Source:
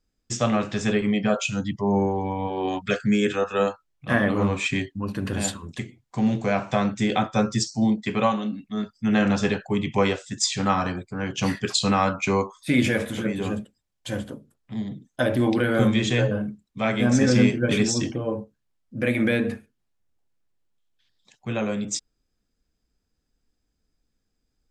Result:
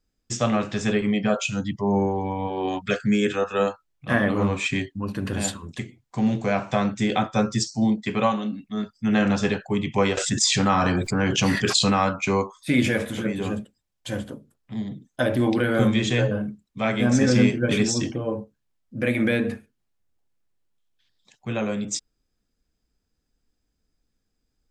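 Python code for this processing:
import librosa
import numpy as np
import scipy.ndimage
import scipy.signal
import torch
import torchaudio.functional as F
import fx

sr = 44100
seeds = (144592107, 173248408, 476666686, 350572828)

y = fx.env_flatten(x, sr, amount_pct=70, at=(10.17, 11.9))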